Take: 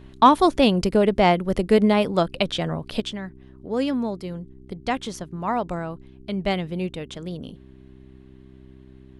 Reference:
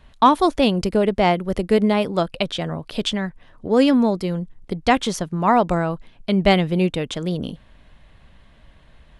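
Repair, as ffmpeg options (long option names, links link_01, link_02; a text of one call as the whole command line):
ffmpeg -i in.wav -af "bandreject=frequency=65:width_type=h:width=4,bandreject=frequency=130:width_type=h:width=4,bandreject=frequency=195:width_type=h:width=4,bandreject=frequency=260:width_type=h:width=4,bandreject=frequency=325:width_type=h:width=4,bandreject=frequency=390:width_type=h:width=4,asetnsamples=nb_out_samples=441:pad=0,asendcmd='3 volume volume 8.5dB',volume=0dB" out.wav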